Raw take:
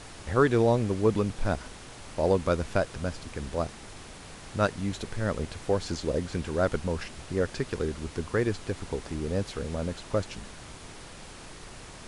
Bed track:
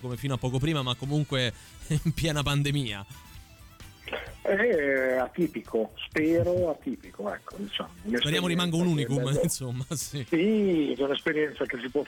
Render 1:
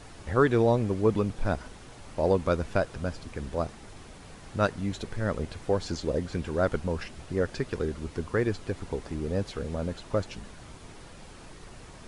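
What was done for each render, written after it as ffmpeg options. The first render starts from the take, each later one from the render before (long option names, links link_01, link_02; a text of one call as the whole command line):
ffmpeg -i in.wav -af "afftdn=noise_reduction=6:noise_floor=-46" out.wav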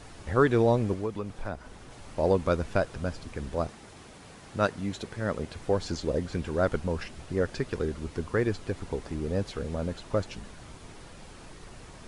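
ffmpeg -i in.wav -filter_complex "[0:a]asettb=1/sr,asplit=3[link_01][link_02][link_03];[link_01]atrim=end=0.934[link_04];[link_02]atrim=start=0.93:end=1.91,asetpts=PTS-STARTPTS,afade=type=in:duration=0.004:curve=qsin,afade=type=out:start_time=0.976:duration=0.004:curve=qsin,acrossover=split=500|2000[link_05][link_06][link_07];[link_05]acompressor=threshold=-34dB:ratio=4[link_08];[link_06]acompressor=threshold=-36dB:ratio=4[link_09];[link_07]acompressor=threshold=-56dB:ratio=4[link_10];[link_08][link_09][link_10]amix=inputs=3:normalize=0[link_11];[link_03]atrim=start=1.906[link_12];[link_04][link_11]acrossfade=duration=0.004:curve1=hsin:curve2=qsin[link_13];[link_13][link_12]acrossfade=duration=0.004:curve1=qsin:curve2=hsin,asettb=1/sr,asplit=3[link_14][link_15][link_16];[link_14]atrim=end=3.694[link_17];[link_15]atrim=start=3.69:end=5.56,asetpts=PTS-STARTPTS,afade=type=in:duration=0.004:curve=qsin,afade=type=out:start_time=1.866:duration=0.004:curve=qsin,highpass=frequency=110:poles=1[link_18];[link_16]atrim=start=5.556[link_19];[link_17][link_18]acrossfade=duration=0.004:curve1=hsin:curve2=qsin[link_20];[link_20][link_19]acrossfade=duration=0.004:curve1=qsin:curve2=hsin" out.wav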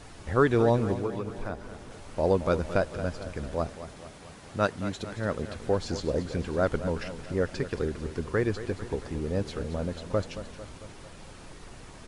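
ffmpeg -i in.wav -af "aecho=1:1:224|448|672|896|1120|1344:0.237|0.135|0.077|0.0439|0.025|0.0143" out.wav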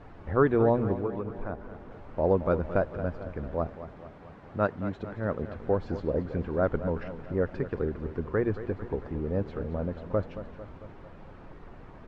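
ffmpeg -i in.wav -af "lowpass=1500,bandreject=frequency=60:width_type=h:width=6,bandreject=frequency=120:width_type=h:width=6" out.wav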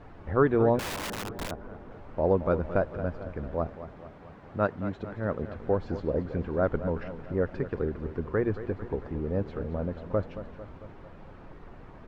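ffmpeg -i in.wav -filter_complex "[0:a]asettb=1/sr,asplit=3[link_01][link_02][link_03];[link_01]atrim=end=0.794[link_04];[link_02]atrim=start=0.79:end=1.51,asetpts=PTS-STARTPTS,afade=type=in:duration=0.004:curve=qsin,afade=type=out:start_time=0.716:duration=0.004:curve=qsin,aeval=exprs='(mod(29.9*val(0)+1,2)-1)/29.9':channel_layout=same[link_05];[link_03]atrim=start=1.506[link_06];[link_04][link_05]acrossfade=duration=0.004:curve1=hsin:curve2=qsin[link_07];[link_07][link_06]acrossfade=duration=0.004:curve1=qsin:curve2=hsin" out.wav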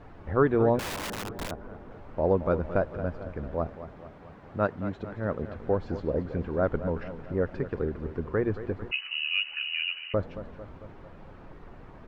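ffmpeg -i in.wav -filter_complex "[0:a]asettb=1/sr,asplit=3[link_01][link_02][link_03];[link_01]atrim=end=8.914[link_04];[link_02]atrim=start=8.91:end=10.14,asetpts=PTS-STARTPTS,afade=type=in:duration=0.004:curve=qsin,afade=type=out:start_time=1.226:duration=0.004:curve=qsin,lowpass=frequency=2600:width_type=q:width=0.5098,lowpass=frequency=2600:width_type=q:width=0.6013,lowpass=frequency=2600:width_type=q:width=0.9,lowpass=frequency=2600:width_type=q:width=2.563,afreqshift=-3000[link_05];[link_03]atrim=start=10.136[link_06];[link_04][link_05]acrossfade=duration=0.004:curve1=hsin:curve2=qsin[link_07];[link_07][link_06]acrossfade=duration=0.004:curve1=qsin:curve2=hsin" out.wav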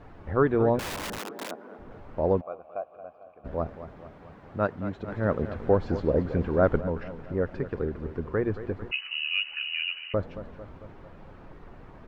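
ffmpeg -i in.wav -filter_complex "[0:a]asettb=1/sr,asplit=3[link_01][link_02][link_03];[link_01]atrim=end=1.184[link_04];[link_02]atrim=start=1.18:end=1.79,asetpts=PTS-STARTPTS,afade=type=in:duration=0.004:curve=qsin,afade=type=out:start_time=0.606:duration=0.004:curve=qsin,highpass=frequency=230:width=0.5412,highpass=frequency=230:width=1.3066[link_05];[link_03]atrim=start=1.786[link_06];[link_04][link_05]acrossfade=duration=0.004:curve1=hsin:curve2=qsin[link_07];[link_07][link_06]acrossfade=duration=0.004:curve1=qsin:curve2=hsin,asplit=3[link_08][link_09][link_10];[link_08]afade=type=out:start_time=2.4:duration=0.02[link_11];[link_09]asplit=3[link_12][link_13][link_14];[link_12]bandpass=frequency=730:width_type=q:width=8,volume=0dB[link_15];[link_13]bandpass=frequency=1090:width_type=q:width=8,volume=-6dB[link_16];[link_14]bandpass=frequency=2440:width_type=q:width=8,volume=-9dB[link_17];[link_15][link_16][link_17]amix=inputs=3:normalize=0,afade=type=in:start_time=2.4:duration=0.02,afade=type=out:start_time=3.44:duration=0.02[link_18];[link_10]afade=type=in:start_time=3.44:duration=0.02[link_19];[link_11][link_18][link_19]amix=inputs=3:normalize=0,asplit=3[link_20][link_21][link_22];[link_20]atrim=end=5.082[link_23];[link_21]atrim=start=5.078:end=6.812,asetpts=PTS-STARTPTS,volume=4.5dB[link_24];[link_22]atrim=start=6.808[link_25];[link_23][link_24]acrossfade=duration=0.004:curve1=hsin:curve2=hsin[link_26];[link_26][link_25]acrossfade=duration=0.004:curve1=hsin:curve2=hsin" out.wav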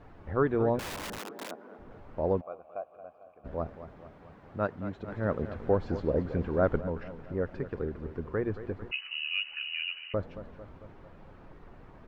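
ffmpeg -i in.wav -af "volume=-4dB" out.wav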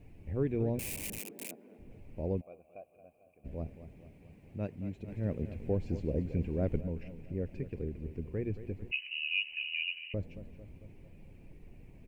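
ffmpeg -i in.wav -af "firequalizer=gain_entry='entry(120,0);entry(1300,-26);entry(2400,3);entry(3400,-10);entry(8800,8)':delay=0.05:min_phase=1" out.wav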